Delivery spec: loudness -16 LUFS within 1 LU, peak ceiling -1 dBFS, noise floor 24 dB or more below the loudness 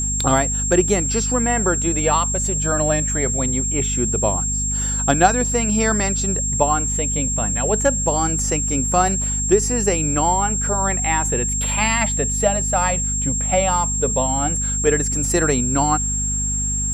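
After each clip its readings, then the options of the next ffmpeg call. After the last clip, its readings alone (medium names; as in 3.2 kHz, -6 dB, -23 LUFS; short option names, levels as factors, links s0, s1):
hum 50 Hz; highest harmonic 250 Hz; hum level -23 dBFS; steady tone 7.5 kHz; tone level -21 dBFS; loudness -18.5 LUFS; peak level -1.5 dBFS; loudness target -16.0 LUFS
-> -af "bandreject=f=50:t=h:w=4,bandreject=f=100:t=h:w=4,bandreject=f=150:t=h:w=4,bandreject=f=200:t=h:w=4,bandreject=f=250:t=h:w=4"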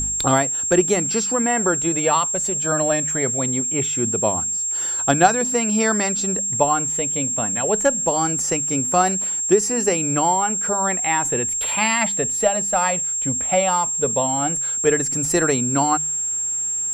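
hum not found; steady tone 7.5 kHz; tone level -21 dBFS
-> -af "bandreject=f=7500:w=30"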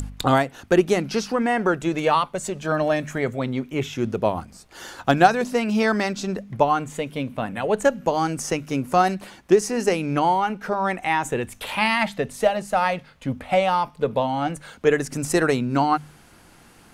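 steady tone not found; loudness -22.5 LUFS; peak level -3.5 dBFS; loudness target -16.0 LUFS
-> -af "volume=2.11,alimiter=limit=0.891:level=0:latency=1"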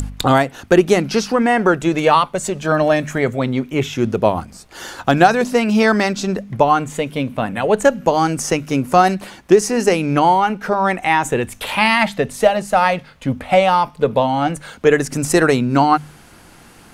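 loudness -16.5 LUFS; peak level -1.0 dBFS; noise floor -45 dBFS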